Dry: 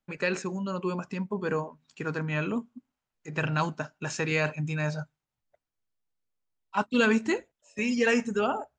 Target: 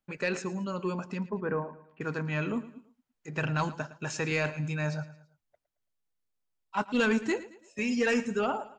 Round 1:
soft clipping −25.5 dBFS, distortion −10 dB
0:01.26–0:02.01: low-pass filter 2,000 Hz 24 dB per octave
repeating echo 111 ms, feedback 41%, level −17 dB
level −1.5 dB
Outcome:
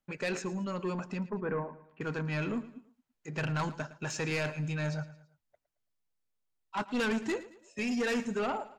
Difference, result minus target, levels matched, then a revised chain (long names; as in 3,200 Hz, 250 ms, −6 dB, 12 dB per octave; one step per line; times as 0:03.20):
soft clipping: distortion +11 dB
soft clipping −15.5 dBFS, distortion −21 dB
0:01.26–0:02.01: low-pass filter 2,000 Hz 24 dB per octave
repeating echo 111 ms, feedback 41%, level −17 dB
level −1.5 dB